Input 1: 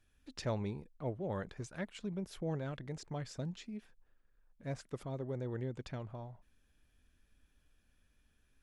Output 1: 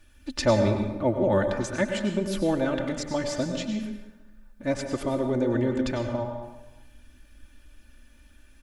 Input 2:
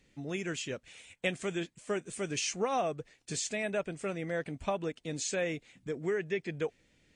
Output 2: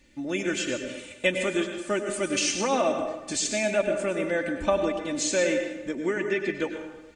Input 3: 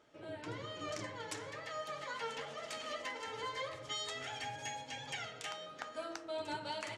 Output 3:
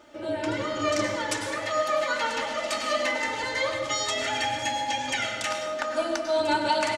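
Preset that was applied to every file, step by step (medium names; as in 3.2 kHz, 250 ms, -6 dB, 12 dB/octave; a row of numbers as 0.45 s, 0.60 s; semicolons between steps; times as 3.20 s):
comb 3.4 ms, depth 75%; plate-style reverb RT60 1.1 s, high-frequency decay 0.65×, pre-delay 85 ms, DRR 5 dB; normalise loudness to -27 LUFS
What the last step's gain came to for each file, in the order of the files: +13.0 dB, +5.5 dB, +12.0 dB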